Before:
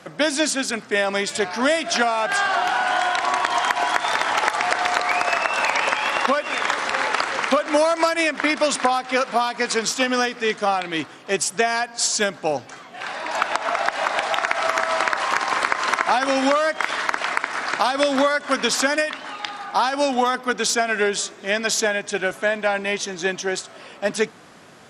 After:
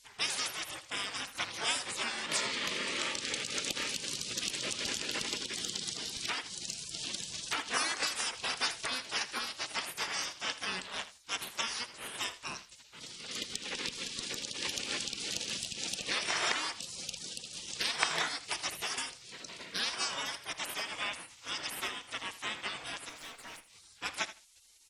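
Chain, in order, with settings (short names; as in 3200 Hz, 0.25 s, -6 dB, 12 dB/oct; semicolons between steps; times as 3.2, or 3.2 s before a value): spectral gate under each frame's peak -20 dB weak; 23.09–23.73 tube stage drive 41 dB, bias 0.6; feedback echo 80 ms, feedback 16%, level -14.5 dB; gain -2 dB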